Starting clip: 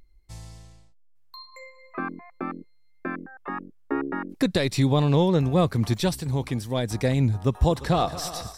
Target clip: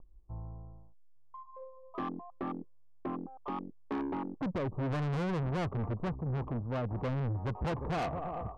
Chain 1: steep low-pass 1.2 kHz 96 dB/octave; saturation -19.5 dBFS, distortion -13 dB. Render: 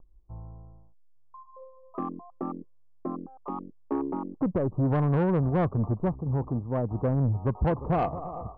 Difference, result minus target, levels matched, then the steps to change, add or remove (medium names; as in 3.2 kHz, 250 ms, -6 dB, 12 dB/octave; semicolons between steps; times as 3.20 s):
saturation: distortion -9 dB
change: saturation -31 dBFS, distortion -4 dB